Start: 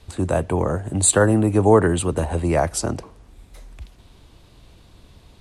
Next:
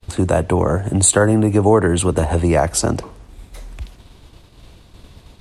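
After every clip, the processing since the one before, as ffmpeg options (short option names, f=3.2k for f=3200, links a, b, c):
-af "agate=range=-33dB:threshold=-44dB:ratio=3:detection=peak,acompressor=threshold=-21dB:ratio=2,volume=7.5dB"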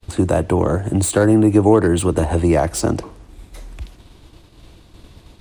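-filter_complex "[0:a]acrossover=split=820[a][b];[b]asoftclip=type=tanh:threshold=-17.5dB[c];[a][c]amix=inputs=2:normalize=0,equalizer=f=320:w=6:g=6.5,volume=-1dB"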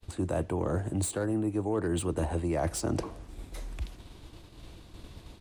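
-filter_complex "[0:a]areverse,acompressor=threshold=-23dB:ratio=6,areverse,asplit=2[a][b];[b]adelay=536.4,volume=-26dB,highshelf=f=4k:g=-12.1[c];[a][c]amix=inputs=2:normalize=0,volume=-4dB"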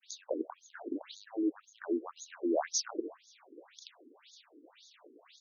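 -af "acrusher=bits=11:mix=0:aa=0.000001,lowpass=f=7.1k:t=q:w=11,afftfilt=real='re*between(b*sr/1024,320*pow(4900/320,0.5+0.5*sin(2*PI*1.9*pts/sr))/1.41,320*pow(4900/320,0.5+0.5*sin(2*PI*1.9*pts/sr))*1.41)':imag='im*between(b*sr/1024,320*pow(4900/320,0.5+0.5*sin(2*PI*1.9*pts/sr))/1.41,320*pow(4900/320,0.5+0.5*sin(2*PI*1.9*pts/sr))*1.41)':win_size=1024:overlap=0.75,volume=1.5dB"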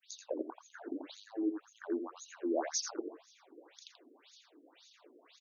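-af "aecho=1:1:84:0.376,volume=-3dB"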